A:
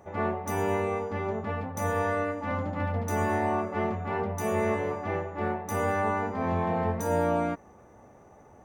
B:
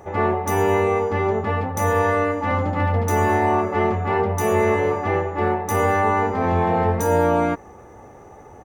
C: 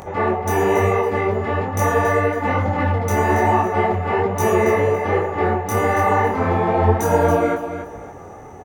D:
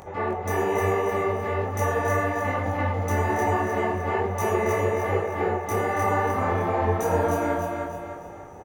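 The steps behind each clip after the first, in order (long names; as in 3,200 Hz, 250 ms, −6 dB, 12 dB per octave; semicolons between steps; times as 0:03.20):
comb filter 2.4 ms, depth 32%; in parallel at −3 dB: brickwall limiter −23 dBFS, peak gain reduction 8 dB; on the sum: level +5 dB
upward compression, threshold −33 dBFS; on a send: repeating echo 278 ms, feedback 27%, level −9.5 dB; on the sum: micro pitch shift up and down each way 39 cents; level +5 dB
parametric band 200 Hz −2 dB; on a send: repeating echo 307 ms, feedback 40%, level −4 dB; on the sum: level −7.5 dB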